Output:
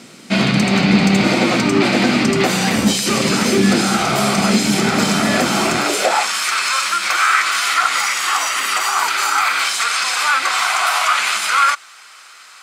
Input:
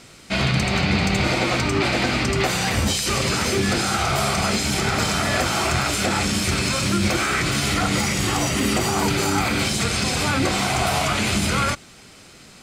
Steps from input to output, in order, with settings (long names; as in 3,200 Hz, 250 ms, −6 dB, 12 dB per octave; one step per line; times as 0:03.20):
high-pass filter sweep 210 Hz → 1,200 Hz, 0:05.69–0:06.34
level +4 dB